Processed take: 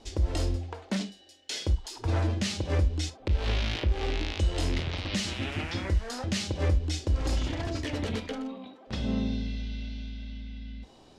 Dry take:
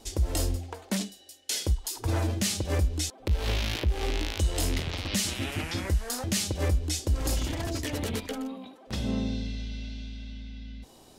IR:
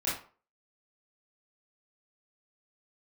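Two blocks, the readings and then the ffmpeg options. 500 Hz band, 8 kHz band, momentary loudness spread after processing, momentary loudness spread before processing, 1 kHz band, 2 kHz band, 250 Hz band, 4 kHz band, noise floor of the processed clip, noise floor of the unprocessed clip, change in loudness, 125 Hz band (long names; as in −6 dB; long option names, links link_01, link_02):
−0.5 dB, −8.5 dB, 12 LU, 12 LU, −0.5 dB, −0.5 dB, 0.0 dB, −2.0 dB, −55 dBFS, −54 dBFS, −1.0 dB, +0.5 dB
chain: -filter_complex "[0:a]lowpass=4800,asplit=2[link_01][link_02];[1:a]atrim=start_sample=2205,atrim=end_sample=3528[link_03];[link_02][link_03]afir=irnorm=-1:irlink=0,volume=-16dB[link_04];[link_01][link_04]amix=inputs=2:normalize=0,volume=-1.5dB"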